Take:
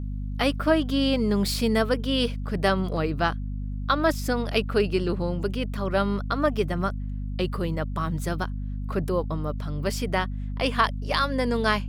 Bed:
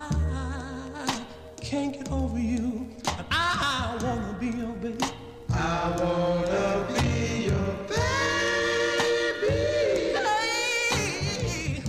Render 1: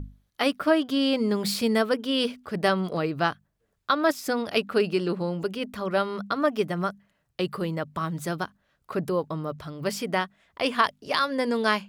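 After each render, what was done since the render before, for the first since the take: notches 50/100/150/200/250 Hz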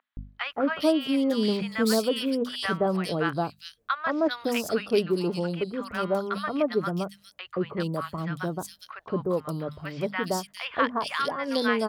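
three bands offset in time mids, lows, highs 0.17/0.41 s, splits 1000/3200 Hz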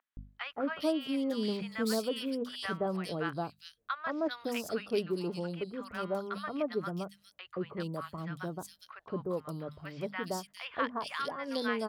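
gain -8 dB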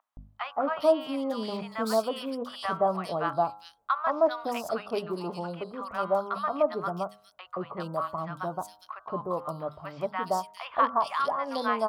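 band shelf 870 Hz +12.5 dB 1.3 oct; de-hum 104 Hz, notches 15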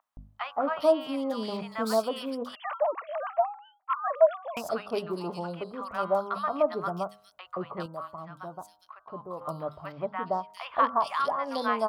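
2.55–4.57 sine-wave speech; 7.86–9.41 gain -7.5 dB; 9.92–10.5 air absorption 350 m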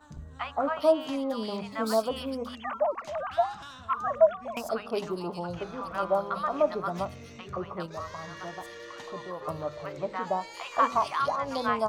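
add bed -19 dB

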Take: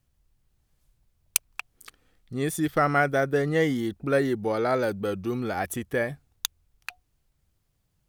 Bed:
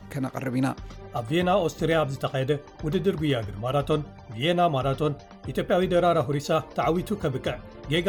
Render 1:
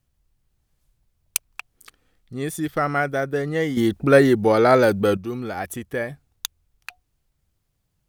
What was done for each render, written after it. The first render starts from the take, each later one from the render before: 3.77–5.17 gain +9.5 dB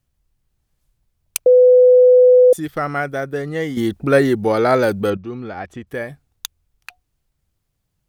1.46–2.53 bleep 501 Hz -6 dBFS; 5.1–5.87 air absorption 150 m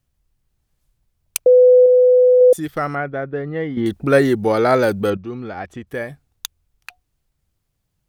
1.82–2.41 flutter echo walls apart 6.7 m, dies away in 0.23 s; 2.95–3.86 air absorption 390 m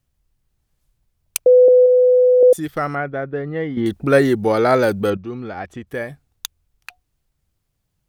1.68–2.43 HPF 360 Hz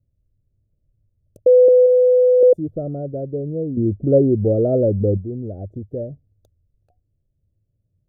elliptic low-pass 610 Hz, stop band 40 dB; bell 100 Hz +12.5 dB 0.5 oct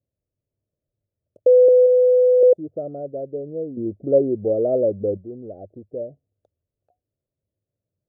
band-pass 680 Hz, Q 1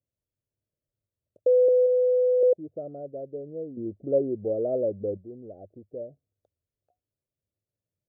gain -7 dB

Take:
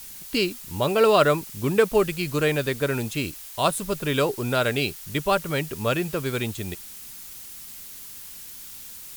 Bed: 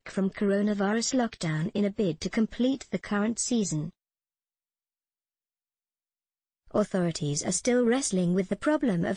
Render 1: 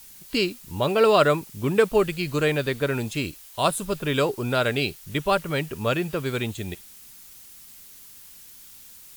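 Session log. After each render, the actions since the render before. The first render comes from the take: noise print and reduce 6 dB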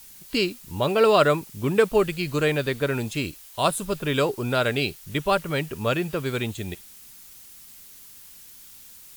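nothing audible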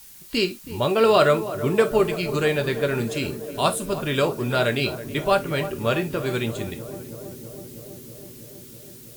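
on a send: darkening echo 0.324 s, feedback 84%, low-pass 1200 Hz, level -12.5 dB; on the sum: non-linear reverb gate 90 ms falling, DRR 6.5 dB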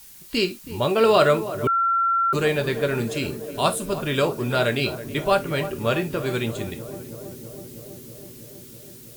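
1.67–2.33 bleep 1360 Hz -17.5 dBFS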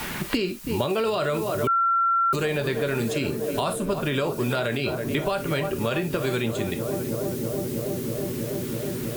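limiter -16 dBFS, peak gain reduction 10 dB; three-band squash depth 100%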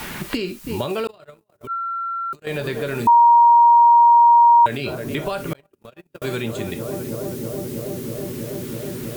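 1.07–2.47 gate -22 dBFS, range -50 dB; 3.07–4.66 bleep 943 Hz -8 dBFS; 5.53–6.22 gate -22 dBFS, range -44 dB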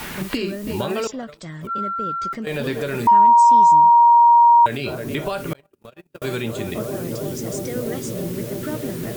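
add bed -5.5 dB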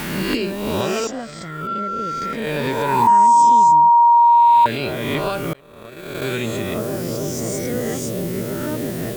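spectral swells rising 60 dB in 1.16 s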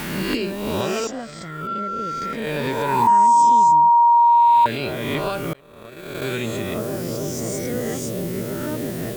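gain -2 dB

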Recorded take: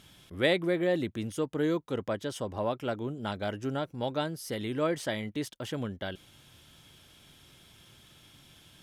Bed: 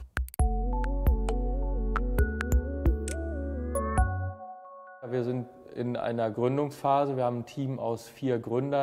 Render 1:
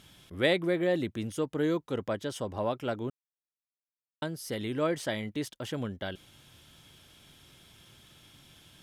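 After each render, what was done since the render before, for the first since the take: 3.1–4.22 mute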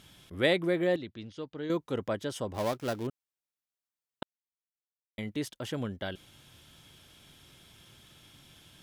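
0.96–1.7 ladder low-pass 5200 Hz, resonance 45%; 2.54–3.07 switching dead time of 0.15 ms; 4.23–5.18 mute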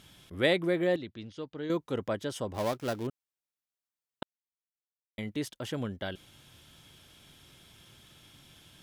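nothing audible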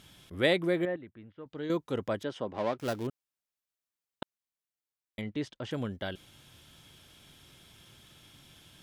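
0.85–1.46 ladder low-pass 2300 Hz, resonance 30%; 2.23–2.79 BPF 160–3100 Hz; 5.21–5.71 air absorption 120 m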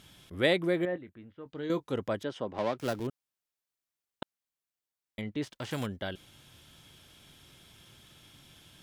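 0.9–1.94 doubler 22 ms -13 dB; 2.58–3 three-band squash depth 40%; 5.42–5.85 spectral whitening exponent 0.6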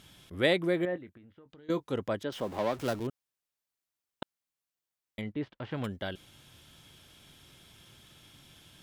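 1.17–1.69 compressor 12:1, threshold -51 dBFS; 2.32–2.99 zero-crossing step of -43.5 dBFS; 5.32–5.84 air absorption 370 m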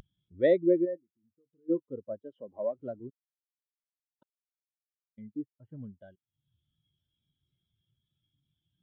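upward compressor, threshold -34 dBFS; spectral expander 2.5:1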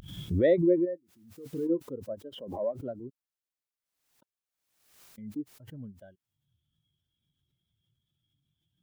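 backwards sustainer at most 68 dB/s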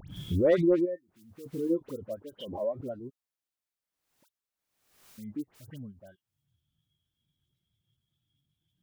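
hard clip -16.5 dBFS, distortion -24 dB; dispersion highs, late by 82 ms, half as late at 1900 Hz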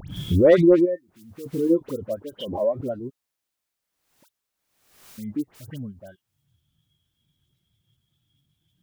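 gain +8.5 dB

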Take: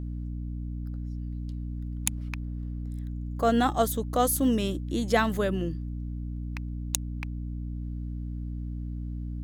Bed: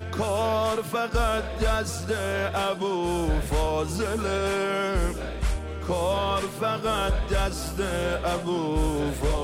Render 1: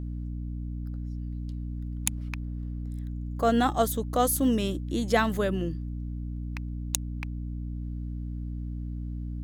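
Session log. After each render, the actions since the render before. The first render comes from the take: nothing audible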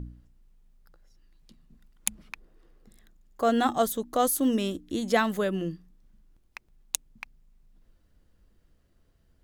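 de-hum 60 Hz, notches 5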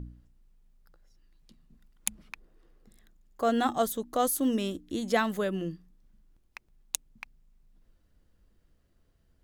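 gain -2.5 dB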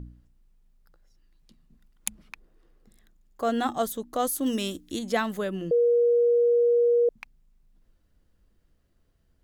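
4.46–4.99 high shelf 2600 Hz +10 dB; 5.71–7.09 bleep 476 Hz -17.5 dBFS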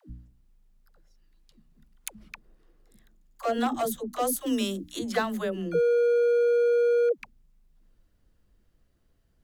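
hard clip -20 dBFS, distortion -18 dB; dispersion lows, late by 0.101 s, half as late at 350 Hz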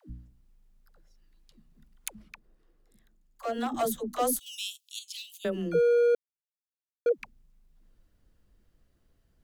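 2.22–3.74 gain -5 dB; 4.39–5.45 steep high-pass 2600 Hz 72 dB/oct; 6.15–7.06 mute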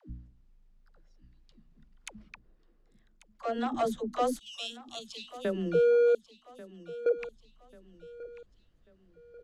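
air absorption 96 m; feedback echo 1.14 s, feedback 40%, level -17 dB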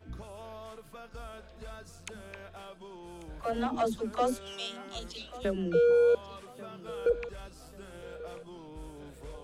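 add bed -21 dB

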